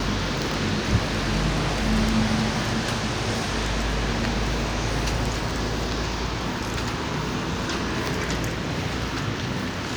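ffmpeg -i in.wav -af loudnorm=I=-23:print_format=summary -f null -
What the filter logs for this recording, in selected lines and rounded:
Input Integrated:    -25.8 LUFS
Input True Peak:      -8.4 dBTP
Input LRA:             3.1 LU
Input Threshold:     -35.8 LUFS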